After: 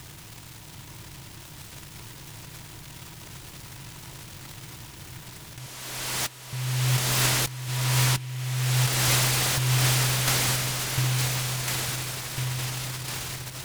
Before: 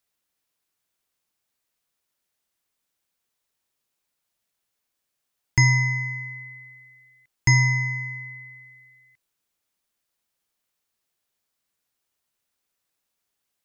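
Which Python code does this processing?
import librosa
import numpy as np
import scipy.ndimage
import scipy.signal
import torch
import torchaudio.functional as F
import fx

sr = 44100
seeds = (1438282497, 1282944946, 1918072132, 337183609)

y = fx.bin_compress(x, sr, power=0.4)
y = fx.env_lowpass_down(y, sr, base_hz=2900.0, full_db=-15.5)
y = fx.echo_alternate(y, sr, ms=701, hz=1300.0, feedback_pct=75, wet_db=-2.5)
y = fx.over_compress(y, sr, threshold_db=-24.0, ratio=-0.5)
y = fx.highpass(y, sr, hz=290.0, slope=12, at=(5.66, 6.53))
y = fx.noise_mod_delay(y, sr, seeds[0], noise_hz=2400.0, depth_ms=0.19)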